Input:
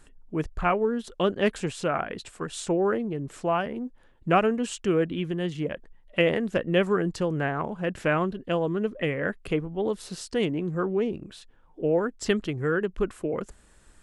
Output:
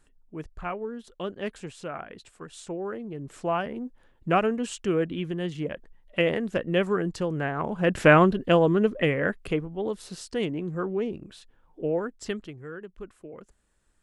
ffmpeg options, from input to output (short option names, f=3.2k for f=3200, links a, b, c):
-af "volume=8.5dB,afade=t=in:st=2.94:d=0.55:silence=0.421697,afade=t=in:st=7.55:d=0.55:silence=0.316228,afade=t=out:st=8.1:d=1.62:silence=0.281838,afade=t=out:st=11.84:d=0.8:silence=0.266073"